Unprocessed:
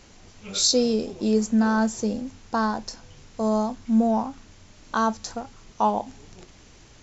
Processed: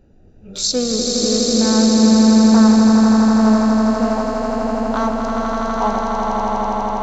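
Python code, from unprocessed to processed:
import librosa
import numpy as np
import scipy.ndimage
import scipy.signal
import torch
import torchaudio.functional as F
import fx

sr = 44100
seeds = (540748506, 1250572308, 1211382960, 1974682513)

y = fx.wiener(x, sr, points=41)
y = fx.echo_swell(y, sr, ms=82, loudest=8, wet_db=-4.5)
y = y * librosa.db_to_amplitude(2.0)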